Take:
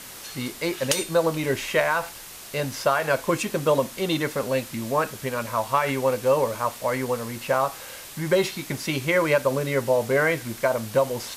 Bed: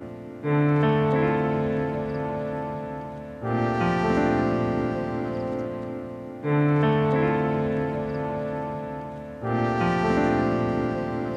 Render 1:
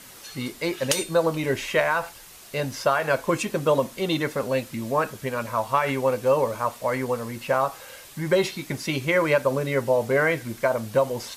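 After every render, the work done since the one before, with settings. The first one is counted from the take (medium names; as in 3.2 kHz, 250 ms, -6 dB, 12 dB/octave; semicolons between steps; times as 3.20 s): noise reduction 6 dB, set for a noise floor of -41 dBFS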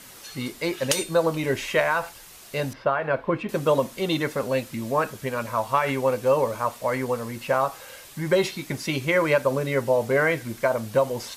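2.73–3.49 s: distance through air 420 m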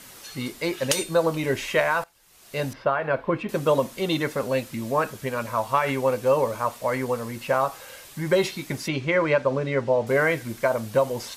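2.04–2.61 s: fade in quadratic, from -19 dB; 8.88–10.07 s: distance through air 120 m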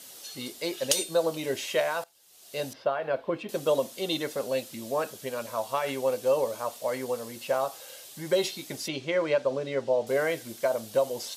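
high-pass 590 Hz 6 dB/octave; high-order bell 1.5 kHz -8.5 dB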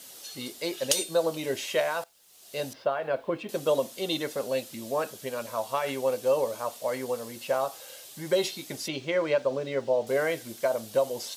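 bit crusher 11-bit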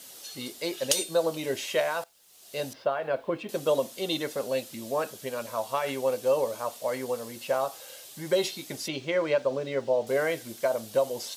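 no audible change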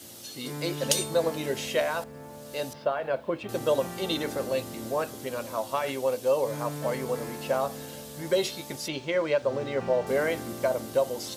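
add bed -15.5 dB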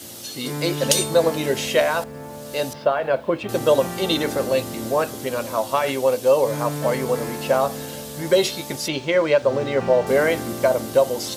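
trim +8 dB; peak limiter -2 dBFS, peak gain reduction 2 dB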